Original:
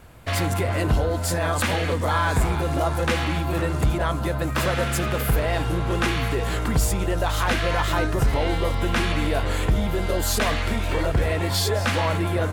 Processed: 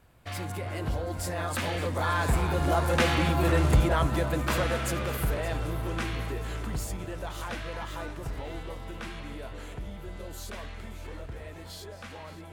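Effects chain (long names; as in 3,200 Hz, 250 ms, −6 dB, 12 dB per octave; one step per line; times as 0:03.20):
source passing by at 0:03.43, 12 m/s, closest 9.9 metres
delay that swaps between a low-pass and a high-pass 286 ms, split 1,000 Hz, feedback 67%, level −11 dB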